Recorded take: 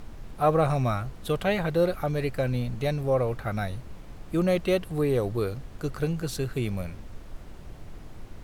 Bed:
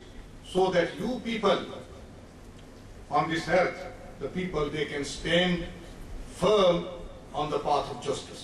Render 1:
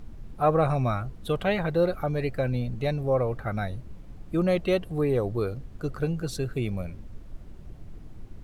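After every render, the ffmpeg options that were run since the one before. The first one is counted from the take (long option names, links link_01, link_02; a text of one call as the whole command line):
ffmpeg -i in.wav -af "afftdn=noise_reduction=9:noise_floor=-43" out.wav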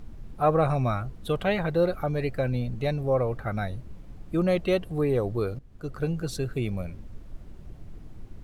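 ffmpeg -i in.wav -filter_complex "[0:a]asplit=2[link_01][link_02];[link_01]atrim=end=5.59,asetpts=PTS-STARTPTS,afade=type=out:start_time=5.586:duration=0.004:curve=hsin:silence=0.188365[link_03];[link_02]atrim=start=5.59,asetpts=PTS-STARTPTS,afade=type=in:duration=0.5:silence=0.188365[link_04];[link_03][link_04]concat=n=2:v=0:a=1" out.wav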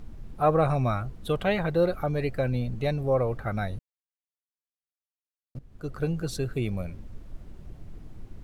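ffmpeg -i in.wav -filter_complex "[0:a]asplit=3[link_01][link_02][link_03];[link_01]atrim=end=3.79,asetpts=PTS-STARTPTS,afade=type=out:start_time=3.786:duration=0.004:curve=hsin[link_04];[link_02]atrim=start=3.79:end=5.55,asetpts=PTS-STARTPTS,volume=0[link_05];[link_03]atrim=start=5.55,asetpts=PTS-STARTPTS,afade=type=in:duration=0.004:curve=hsin[link_06];[link_04][link_05][link_06]concat=n=3:v=0:a=1" out.wav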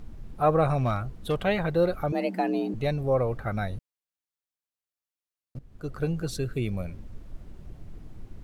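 ffmpeg -i in.wav -filter_complex "[0:a]asettb=1/sr,asplit=3[link_01][link_02][link_03];[link_01]atrim=end=0.784[link_04];[link_02]atrim=start=0.78:end=1.43,asetpts=PTS-STARTPTS,afade=type=in:duration=0.004:curve=qsin,afade=type=out:start_time=0.646:duration=0.004:curve=qsin,volume=20dB,asoftclip=hard,volume=-20dB[link_05];[link_03]atrim=start=1.426[link_06];[link_04][link_05]acrossfade=duration=0.004:curve1=hsin:curve2=qsin[link_07];[link_07][link_06]acrossfade=duration=0.004:curve1=qsin:curve2=hsin,asettb=1/sr,asplit=3[link_08][link_09][link_10];[link_08]atrim=end=2.124[link_11];[link_09]atrim=start=2.12:end=2.74,asetpts=PTS-STARTPTS,afade=type=in:duration=0.004:curve=qsin,afade=type=out:start_time=0.616:duration=0.004:curve=qsin,afreqshift=180[link_12];[link_10]atrim=start=2.736[link_13];[link_11][link_12]acrossfade=duration=0.004:curve1=hsin:curve2=qsin[link_14];[link_14][link_13]acrossfade=duration=0.004:curve1=qsin:curve2=hsin,asettb=1/sr,asplit=3[link_15][link_16][link_17];[link_15]atrim=end=6.314[link_18];[link_16]atrim=start=6.31:end=6.74,asetpts=PTS-STARTPTS,afade=type=in:duration=0.004:curve=qsin,afade=type=out:start_time=0.426:duration=0.004:curve=qsin,equalizer=frequency=820:width_type=o:width=0.7:gain=-6.5[link_19];[link_17]atrim=start=6.736[link_20];[link_18][link_19]acrossfade=duration=0.004:curve1=hsin:curve2=qsin[link_21];[link_21][link_20]acrossfade=duration=0.004:curve1=qsin:curve2=hsin" out.wav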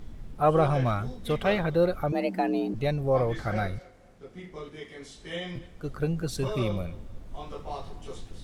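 ffmpeg -i in.wav -i bed.wav -filter_complex "[1:a]volume=-11.5dB[link_01];[0:a][link_01]amix=inputs=2:normalize=0" out.wav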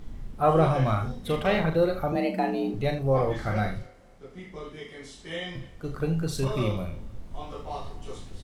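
ffmpeg -i in.wav -filter_complex "[0:a]asplit=2[link_01][link_02];[link_02]adelay=38,volume=-11dB[link_03];[link_01][link_03]amix=inputs=2:normalize=0,aecho=1:1:37|80:0.473|0.237" out.wav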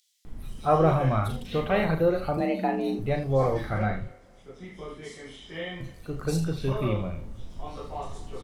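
ffmpeg -i in.wav -filter_complex "[0:a]acrossover=split=3600[link_01][link_02];[link_01]adelay=250[link_03];[link_03][link_02]amix=inputs=2:normalize=0" out.wav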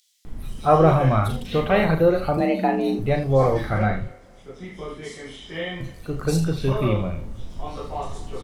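ffmpeg -i in.wav -af "volume=5.5dB" out.wav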